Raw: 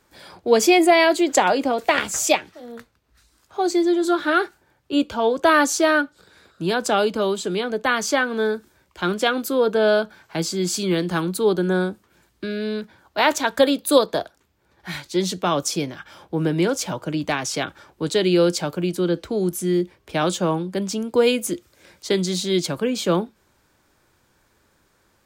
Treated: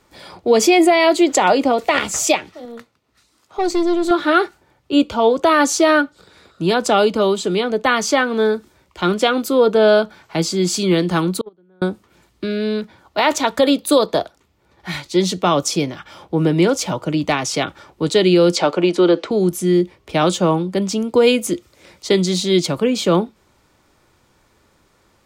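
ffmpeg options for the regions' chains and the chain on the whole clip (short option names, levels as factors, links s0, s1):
-filter_complex "[0:a]asettb=1/sr,asplit=3[s0][s1][s2];[s0]atrim=end=2.654[s3];[s1]atrim=start=2.65:end=4.11,asetpts=PTS-STARTPTS,afade=t=in:d=0.004:c=qsin,afade=t=out:st=1.456:d=0.004:c=qsin,highpass=130,aeval=exprs='(tanh(7.94*val(0)+0.5)-tanh(0.5))/7.94':c=same[s4];[s2]atrim=start=4.106[s5];[s3][s4]acrossfade=d=0.004:c1=hsin:c2=qsin[s6];[s6][s5]acrossfade=d=0.004:c1=qsin:c2=hsin,asettb=1/sr,asplit=3[s7][s8][s9];[s7]atrim=end=11.414[s10];[s8]atrim=start=11.41:end=11.82,asetpts=PTS-STARTPTS,afade=t=in:d=0.004:c=qsin,afade=t=out:st=0.406:d=0.004:c=qsin,agate=range=0.0126:threshold=0.251:ratio=16:release=100:detection=peak,lowpass=2500[s11];[s9]atrim=start=11.816[s12];[s10][s11]acrossfade=d=0.004:c1=hsin:c2=qsin[s13];[s13][s12]acrossfade=d=0.004:c1=qsin:c2=hsin,asettb=1/sr,asplit=3[s14][s15][s16];[s14]atrim=end=18.564[s17];[s15]atrim=start=18.56:end=19.31,asetpts=PTS-STARTPTS,afade=t=in:d=0.004:c=qsin,afade=t=out:st=0.746:d=0.004:c=qsin,acontrast=89,highpass=350,lowpass=7900,highshelf=f=6000:g=-11[s18];[s16]atrim=start=19.306[s19];[s17][s18]acrossfade=d=0.004:c1=hsin:c2=qsin[s20];[s20][s19]acrossfade=d=0.004:c1=qsin:c2=hsin,highshelf=f=10000:g=-8.5,bandreject=f=1600:w=7.8,alimiter=level_in=2.82:limit=0.891:release=50:level=0:latency=1,volume=0.668"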